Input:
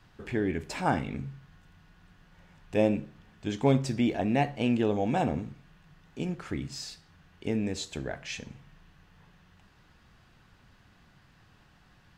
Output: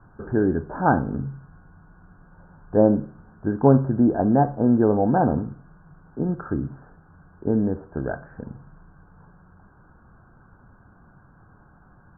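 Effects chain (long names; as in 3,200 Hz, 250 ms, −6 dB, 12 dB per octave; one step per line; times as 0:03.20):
Chebyshev low-pass filter 1,600 Hz, order 8
level +8.5 dB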